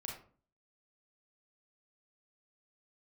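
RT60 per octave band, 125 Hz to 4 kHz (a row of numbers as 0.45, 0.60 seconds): 0.60, 0.55, 0.45, 0.40, 0.35, 0.25 seconds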